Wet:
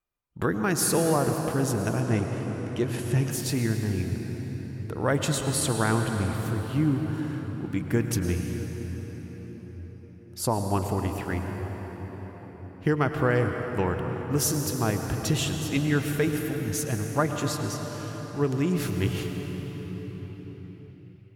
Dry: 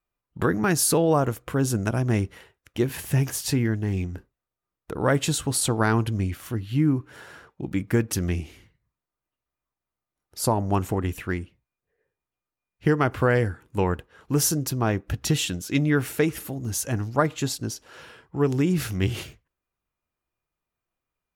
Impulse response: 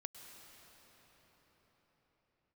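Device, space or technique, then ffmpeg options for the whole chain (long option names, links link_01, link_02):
cathedral: -filter_complex "[1:a]atrim=start_sample=2205[link_01];[0:a][link_01]afir=irnorm=-1:irlink=0,asettb=1/sr,asplit=3[link_02][link_03][link_04];[link_02]atrim=end=2.014[link_05];[link_03]atrim=start=2.01:end=3.31,asetpts=PTS-STARTPTS,afade=type=in:duration=0.004:curve=qsin,afade=type=out:start_time=1.296:duration=0.004:curve=qsin,lowpass=frequency=11000:width=0.5412,lowpass=frequency=11000:width=1.3066[link_06];[link_04]atrim=start=3.306[link_07];[link_05][link_06]acrossfade=duration=0.004:curve1=hsin:curve2=qsin[link_08];[link_08][link_07]acrossfade=duration=0.004:curve1=qsin:curve2=hsin,volume=2dB"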